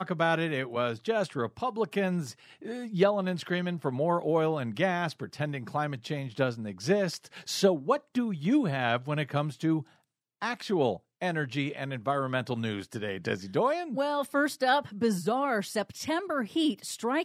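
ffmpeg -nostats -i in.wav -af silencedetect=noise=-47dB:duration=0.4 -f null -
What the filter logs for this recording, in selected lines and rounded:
silence_start: 9.83
silence_end: 10.42 | silence_duration: 0.59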